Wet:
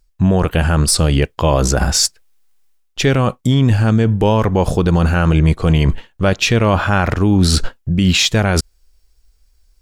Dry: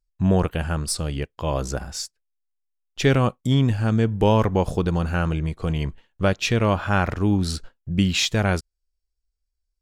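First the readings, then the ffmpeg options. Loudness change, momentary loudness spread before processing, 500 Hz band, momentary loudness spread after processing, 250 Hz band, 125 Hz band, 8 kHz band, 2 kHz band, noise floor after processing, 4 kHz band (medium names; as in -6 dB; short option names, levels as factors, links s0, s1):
+7.5 dB, 10 LU, +6.5 dB, 5 LU, +7.0 dB, +8.0 dB, +12.0 dB, +7.5 dB, -59 dBFS, +9.5 dB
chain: -af "areverse,acompressor=threshold=0.0178:ratio=4,areverse,alimiter=level_in=23.7:limit=0.891:release=50:level=0:latency=1,volume=0.708"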